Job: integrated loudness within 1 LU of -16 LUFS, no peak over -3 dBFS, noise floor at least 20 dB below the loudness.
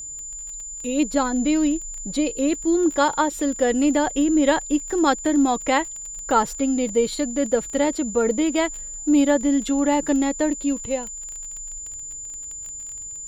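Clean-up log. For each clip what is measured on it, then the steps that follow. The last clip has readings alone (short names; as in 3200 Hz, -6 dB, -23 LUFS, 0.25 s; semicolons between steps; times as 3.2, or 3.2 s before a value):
ticks 20/s; steady tone 7100 Hz; tone level -32 dBFS; loudness -22.5 LUFS; peak -5.5 dBFS; loudness target -16.0 LUFS
-> de-click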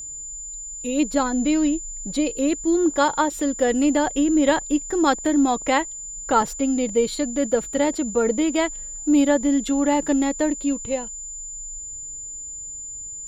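ticks 0.38/s; steady tone 7100 Hz; tone level -32 dBFS
-> notch 7100 Hz, Q 30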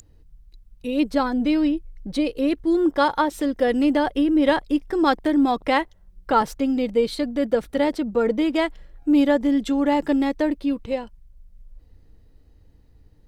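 steady tone none; loudness -22.0 LUFS; peak -6.0 dBFS; loudness target -16.0 LUFS
-> gain +6 dB; limiter -3 dBFS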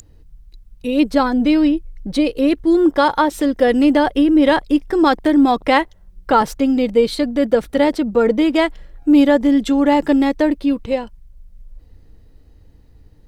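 loudness -16.0 LUFS; peak -3.0 dBFS; noise floor -47 dBFS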